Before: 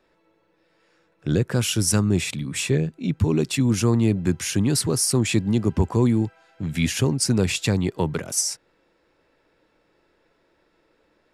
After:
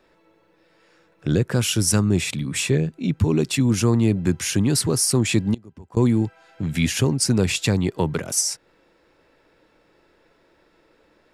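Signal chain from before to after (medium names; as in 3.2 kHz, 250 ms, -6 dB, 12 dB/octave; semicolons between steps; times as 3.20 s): in parallel at -2 dB: compression, threshold -33 dBFS, peak gain reduction 17.5 dB; 5.54–5.97 s: on the sum: inverted gate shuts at -15 dBFS, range -24 dB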